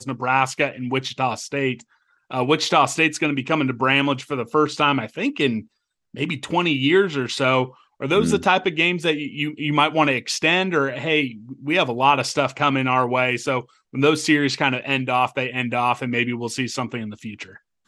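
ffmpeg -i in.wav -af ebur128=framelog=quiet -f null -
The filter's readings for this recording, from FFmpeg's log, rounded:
Integrated loudness:
  I:         -20.7 LUFS
  Threshold: -31.0 LUFS
Loudness range:
  LRA:         2.1 LU
  Threshold: -40.7 LUFS
  LRA low:   -21.8 LUFS
  LRA high:  -19.8 LUFS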